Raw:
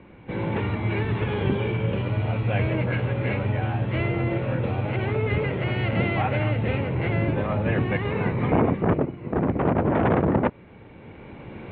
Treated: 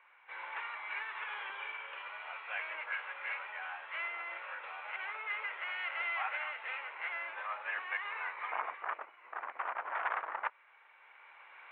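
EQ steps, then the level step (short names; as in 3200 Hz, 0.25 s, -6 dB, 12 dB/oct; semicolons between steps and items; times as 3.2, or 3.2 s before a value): HPF 1100 Hz 24 dB/oct; air absorption 460 m; 0.0 dB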